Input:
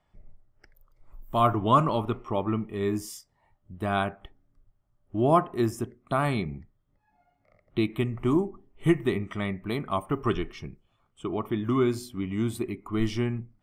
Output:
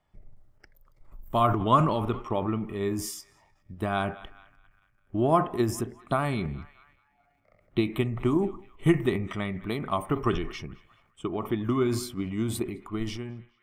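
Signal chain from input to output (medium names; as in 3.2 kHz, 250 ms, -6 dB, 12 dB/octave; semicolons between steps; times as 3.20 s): fade out at the end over 1.04 s; band-passed feedback delay 210 ms, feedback 60%, band-pass 1.9 kHz, level -23.5 dB; transient shaper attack +5 dB, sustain +9 dB; trim -3 dB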